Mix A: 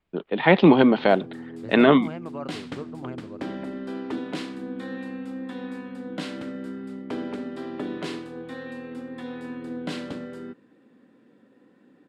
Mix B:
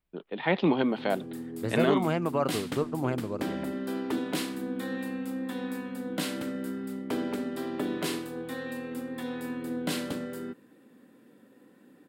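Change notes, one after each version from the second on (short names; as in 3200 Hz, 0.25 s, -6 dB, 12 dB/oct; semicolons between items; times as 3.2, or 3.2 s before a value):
first voice -10.0 dB; second voice +8.0 dB; master: remove air absorption 96 m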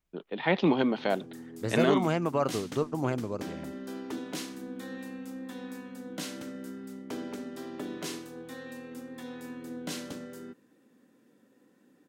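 background -6.5 dB; master: add bell 6100 Hz +10 dB 0.51 oct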